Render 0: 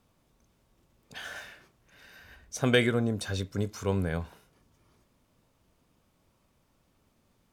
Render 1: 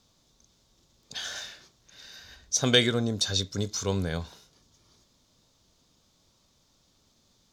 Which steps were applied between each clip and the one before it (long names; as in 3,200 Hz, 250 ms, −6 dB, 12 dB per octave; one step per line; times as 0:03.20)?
flat-topped bell 4,900 Hz +13.5 dB 1.3 octaves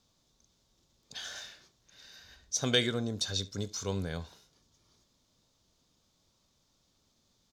single-tap delay 72 ms −22 dB
level −6 dB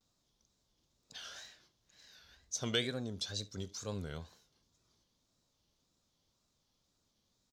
tape wow and flutter 140 cents
level −6.5 dB